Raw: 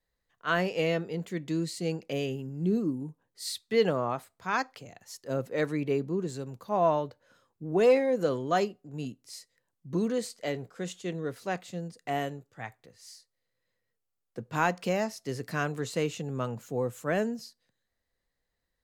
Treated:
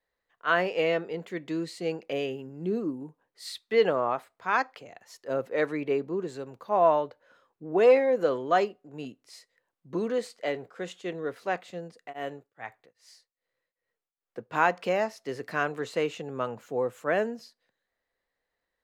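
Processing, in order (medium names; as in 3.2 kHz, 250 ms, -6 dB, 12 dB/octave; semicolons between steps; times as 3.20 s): tone controls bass -14 dB, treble -12 dB; 11.94–14.50 s: tremolo of two beating tones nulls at 2.5 Hz; trim +4 dB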